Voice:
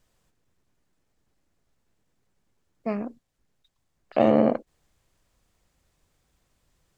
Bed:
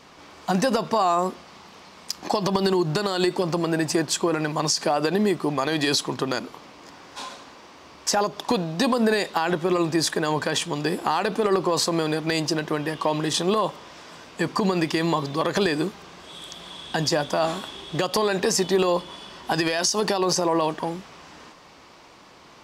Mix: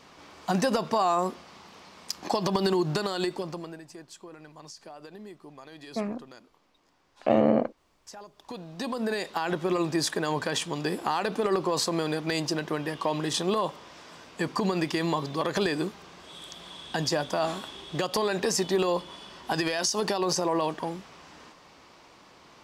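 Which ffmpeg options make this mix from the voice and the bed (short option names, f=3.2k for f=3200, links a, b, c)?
-filter_complex "[0:a]adelay=3100,volume=-2.5dB[a];[1:a]volume=15dB,afade=t=out:st=2.92:d=0.89:silence=0.105925,afade=t=in:st=8.36:d=1.28:silence=0.11885[b];[a][b]amix=inputs=2:normalize=0"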